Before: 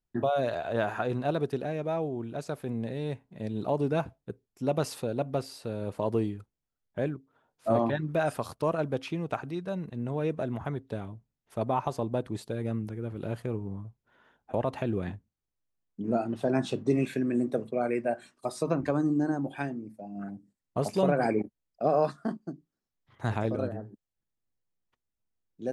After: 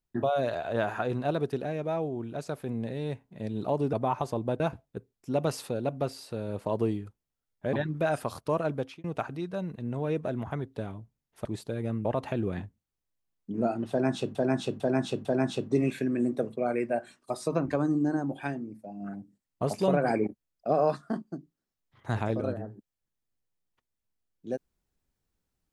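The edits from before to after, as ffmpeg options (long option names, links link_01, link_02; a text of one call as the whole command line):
ffmpeg -i in.wav -filter_complex "[0:a]asplit=10[link_01][link_02][link_03][link_04][link_05][link_06][link_07][link_08][link_09][link_10];[link_01]atrim=end=3.932[link_11];[link_02]atrim=start=11.588:end=12.262[link_12];[link_03]atrim=start=3.928:end=7.062[link_13];[link_04]atrim=start=7.868:end=9.18,asetpts=PTS-STARTPTS,afade=type=out:start_time=1.032:duration=0.28[link_14];[link_05]atrim=start=9.18:end=11.592,asetpts=PTS-STARTPTS,afade=type=in:duration=0.004:curve=hsin[link_15];[link_06]atrim=start=12.258:end=12.862[link_16];[link_07]atrim=start=14.548:end=16.852[link_17];[link_08]atrim=start=16.398:end=16.852[link_18];[link_09]atrim=start=16.398:end=16.852[link_19];[link_10]atrim=start=16.398[link_20];[link_11][link_12]acrossfade=duration=0.004:curve1=hsin:curve2=hsin[link_21];[link_21][link_13]acrossfade=duration=0.004:curve1=hsin:curve2=hsin[link_22];[link_14][link_15]concat=n=2:v=0:a=1[link_23];[link_22][link_23]acrossfade=duration=0.004:curve1=hsin:curve2=hsin[link_24];[link_24][link_16]acrossfade=duration=0.004:curve1=hsin:curve2=hsin[link_25];[link_25][link_17]acrossfade=duration=0.004:curve1=hsin:curve2=hsin[link_26];[link_26][link_18]acrossfade=duration=0.004:curve1=hsin:curve2=hsin[link_27];[link_27][link_19]acrossfade=duration=0.004:curve1=hsin:curve2=hsin[link_28];[link_28][link_20]acrossfade=duration=0.004:curve1=hsin:curve2=hsin" out.wav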